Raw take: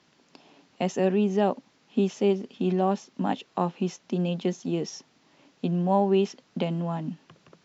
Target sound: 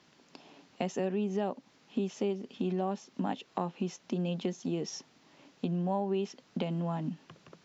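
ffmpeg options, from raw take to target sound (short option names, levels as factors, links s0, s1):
-af "acompressor=threshold=0.0282:ratio=3"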